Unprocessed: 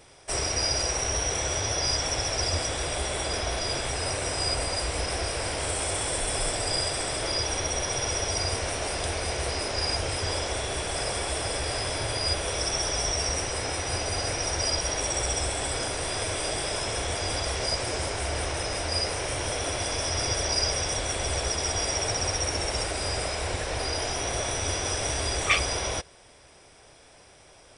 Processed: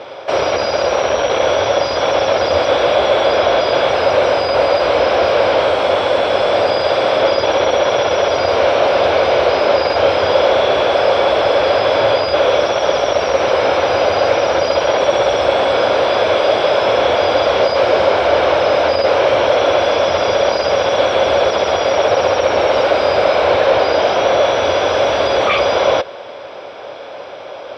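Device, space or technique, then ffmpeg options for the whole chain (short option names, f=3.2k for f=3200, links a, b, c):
overdrive pedal into a guitar cabinet: -filter_complex "[0:a]asplit=2[a][b];[b]highpass=f=720:p=1,volume=27dB,asoftclip=type=tanh:threshold=-8.5dB[c];[a][c]amix=inputs=2:normalize=0,lowpass=f=2.5k:p=1,volume=-6dB,highpass=89,equalizer=f=160:t=q:w=4:g=-4,equalizer=f=550:t=q:w=4:g=10,equalizer=f=1.9k:t=q:w=4:g=-9,equalizer=f=2.7k:t=q:w=4:g=-4,lowpass=f=3.8k:w=0.5412,lowpass=f=3.8k:w=1.3066,volume=5dB"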